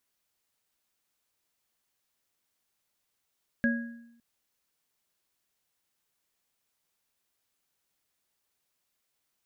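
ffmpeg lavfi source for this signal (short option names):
-f lavfi -i "aevalsrc='0.0794*pow(10,-3*t/0.86)*sin(2*PI*234*t)+0.0237*pow(10,-3*t/0.52)*sin(2*PI*561*t)+0.0562*pow(10,-3*t/0.6)*sin(2*PI*1650*t)':d=0.56:s=44100"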